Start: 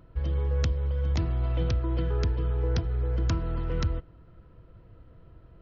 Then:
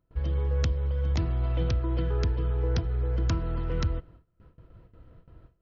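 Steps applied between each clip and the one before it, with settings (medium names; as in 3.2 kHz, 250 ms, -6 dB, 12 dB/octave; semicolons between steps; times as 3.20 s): gate with hold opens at -42 dBFS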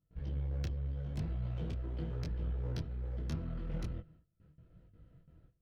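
fifteen-band graphic EQ 160 Hz +8 dB, 400 Hz -3 dB, 1 kHz -9 dB; one-sided clip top -33.5 dBFS, bottom -19 dBFS; detune thickener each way 28 cents; trim -5.5 dB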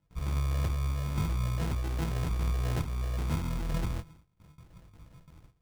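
sample-and-hold 38×; trim +7 dB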